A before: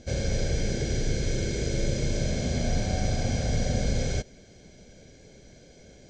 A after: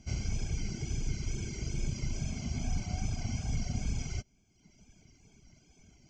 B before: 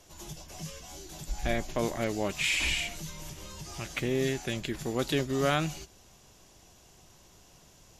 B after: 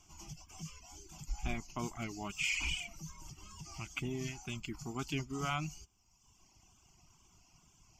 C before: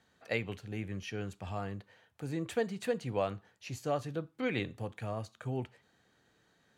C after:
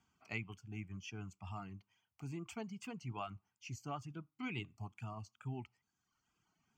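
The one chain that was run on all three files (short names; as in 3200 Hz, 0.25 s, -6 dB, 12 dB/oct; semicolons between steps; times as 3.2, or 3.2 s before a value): fixed phaser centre 2600 Hz, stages 8; reverb removal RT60 1.1 s; wow and flutter 58 cents; gain -3.5 dB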